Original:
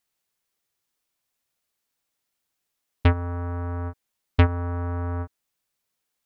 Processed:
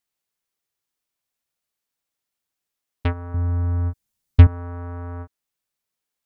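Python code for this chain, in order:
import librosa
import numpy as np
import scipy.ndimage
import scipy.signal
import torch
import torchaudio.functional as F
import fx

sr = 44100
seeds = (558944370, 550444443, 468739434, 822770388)

y = fx.bass_treble(x, sr, bass_db=13, treble_db=6, at=(3.34, 4.47))
y = y * 10.0 ** (-4.0 / 20.0)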